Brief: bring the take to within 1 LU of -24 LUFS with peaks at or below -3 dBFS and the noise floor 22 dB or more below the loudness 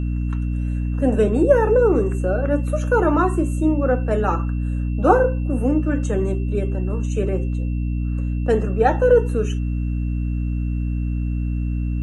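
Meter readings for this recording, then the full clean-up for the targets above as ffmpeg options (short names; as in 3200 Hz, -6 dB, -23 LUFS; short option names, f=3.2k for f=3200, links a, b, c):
hum 60 Hz; harmonics up to 300 Hz; hum level -20 dBFS; steady tone 2700 Hz; tone level -48 dBFS; loudness -20.5 LUFS; peak -2.0 dBFS; loudness target -24.0 LUFS
-> -af "bandreject=f=60:t=h:w=4,bandreject=f=120:t=h:w=4,bandreject=f=180:t=h:w=4,bandreject=f=240:t=h:w=4,bandreject=f=300:t=h:w=4"
-af "bandreject=f=2.7k:w=30"
-af "volume=-3.5dB"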